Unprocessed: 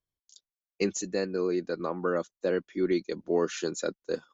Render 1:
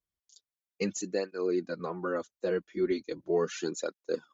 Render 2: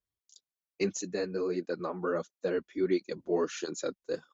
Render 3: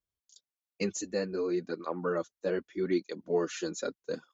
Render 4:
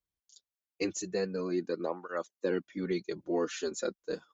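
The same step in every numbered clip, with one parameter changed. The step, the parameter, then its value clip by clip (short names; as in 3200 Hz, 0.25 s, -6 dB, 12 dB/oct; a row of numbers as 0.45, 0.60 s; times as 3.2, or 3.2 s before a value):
tape flanging out of phase, nulls at: 0.38, 1.5, 0.81, 0.24 Hz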